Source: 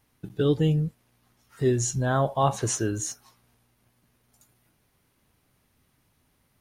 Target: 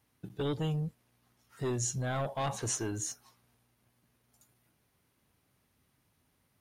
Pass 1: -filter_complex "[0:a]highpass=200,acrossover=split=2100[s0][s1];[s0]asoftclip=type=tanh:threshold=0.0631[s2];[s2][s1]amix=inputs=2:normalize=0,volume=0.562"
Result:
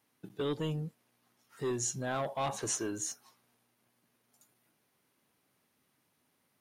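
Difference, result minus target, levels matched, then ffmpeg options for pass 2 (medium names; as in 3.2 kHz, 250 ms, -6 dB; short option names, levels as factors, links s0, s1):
125 Hz band -4.5 dB
-filter_complex "[0:a]highpass=52,acrossover=split=2100[s0][s1];[s0]asoftclip=type=tanh:threshold=0.0631[s2];[s2][s1]amix=inputs=2:normalize=0,volume=0.562"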